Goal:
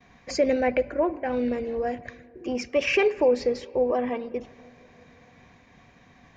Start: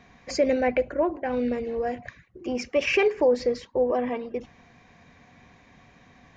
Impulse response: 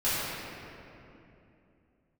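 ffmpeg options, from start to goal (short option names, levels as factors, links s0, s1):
-filter_complex "[0:a]agate=range=0.0224:threshold=0.00224:ratio=3:detection=peak,asplit=2[s0][s1];[1:a]atrim=start_sample=2205,lowpass=4200,adelay=57[s2];[s1][s2]afir=irnorm=-1:irlink=0,volume=0.0224[s3];[s0][s3]amix=inputs=2:normalize=0"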